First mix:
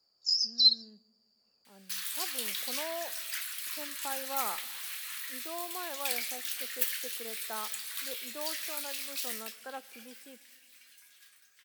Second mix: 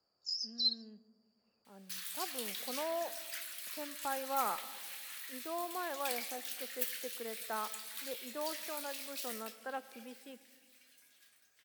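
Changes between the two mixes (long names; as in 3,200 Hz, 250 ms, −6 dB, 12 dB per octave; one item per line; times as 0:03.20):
speech: send +6.5 dB
first sound −10.0 dB
second sound −6.5 dB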